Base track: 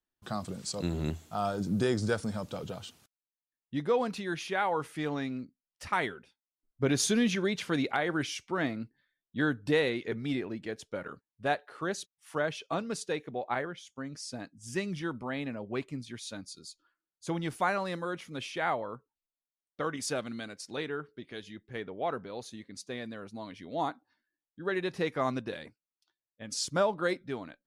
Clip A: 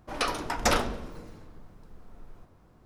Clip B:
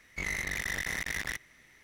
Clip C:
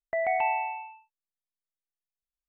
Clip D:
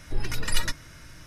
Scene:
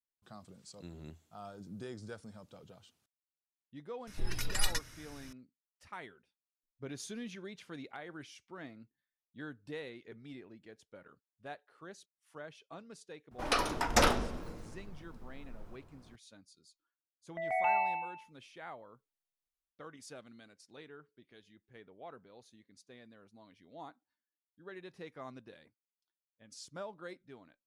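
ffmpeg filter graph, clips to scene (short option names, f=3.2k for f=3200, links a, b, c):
-filter_complex "[0:a]volume=-16.5dB[a];[4:a]highshelf=f=3.5k:g=6[b];[3:a]dynaudnorm=f=130:g=5:m=11.5dB[c];[b]atrim=end=1.26,asetpts=PTS-STARTPTS,volume=-8dB,afade=t=in:d=0.004:c=hsin,afade=t=out:st=1.256:d=0.004:c=hsin,adelay=4070[d];[1:a]atrim=end=2.85,asetpts=PTS-STARTPTS,volume=-1.5dB,afade=t=in:d=0.004:c=hsin,afade=t=out:st=2.846:d=0.004:c=hsin,adelay=13310[e];[c]atrim=end=2.48,asetpts=PTS-STARTPTS,volume=-13dB,afade=t=in:d=0.004:c=hsin,afade=t=out:st=2.476:d=0.004:c=hsin,adelay=17240[f];[a][d][e][f]amix=inputs=4:normalize=0"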